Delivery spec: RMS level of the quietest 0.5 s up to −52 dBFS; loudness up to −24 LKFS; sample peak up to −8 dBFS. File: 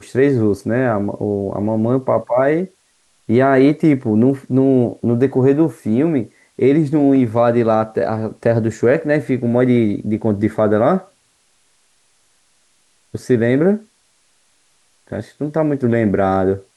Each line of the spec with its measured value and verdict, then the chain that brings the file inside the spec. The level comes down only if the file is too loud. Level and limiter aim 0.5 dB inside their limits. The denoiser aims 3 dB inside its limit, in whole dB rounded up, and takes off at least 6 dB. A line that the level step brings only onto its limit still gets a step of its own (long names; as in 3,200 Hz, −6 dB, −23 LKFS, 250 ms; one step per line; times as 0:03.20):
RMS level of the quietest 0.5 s −59 dBFS: in spec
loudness −16.5 LKFS: out of spec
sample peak −3.5 dBFS: out of spec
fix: level −8 dB